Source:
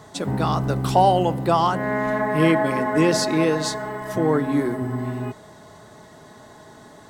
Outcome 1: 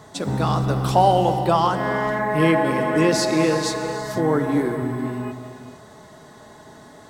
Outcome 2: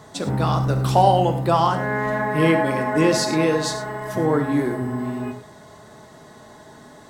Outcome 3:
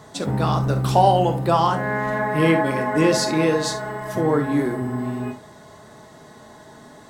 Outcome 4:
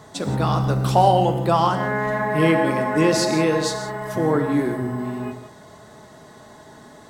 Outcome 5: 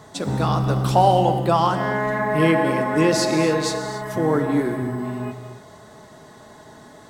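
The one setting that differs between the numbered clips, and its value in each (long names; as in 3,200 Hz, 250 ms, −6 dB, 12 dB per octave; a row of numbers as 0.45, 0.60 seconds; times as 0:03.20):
reverb whose tail is shaped and stops, gate: 500, 130, 90, 200, 310 milliseconds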